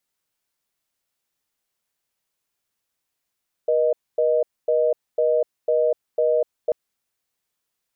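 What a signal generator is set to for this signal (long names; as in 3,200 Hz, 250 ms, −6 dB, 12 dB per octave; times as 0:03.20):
call progress tone reorder tone, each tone −19 dBFS 3.04 s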